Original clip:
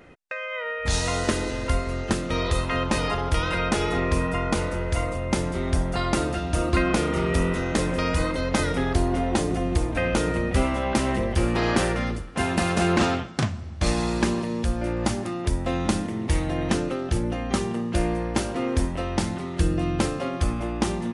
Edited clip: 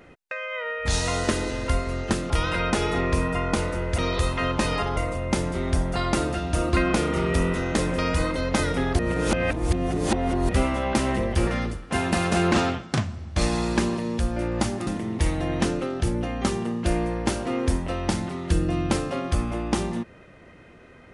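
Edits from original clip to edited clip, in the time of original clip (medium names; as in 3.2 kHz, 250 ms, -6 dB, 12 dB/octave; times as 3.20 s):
2.30–3.29 s: move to 4.97 s
8.99–10.49 s: reverse
11.47–11.92 s: delete
15.32–15.96 s: delete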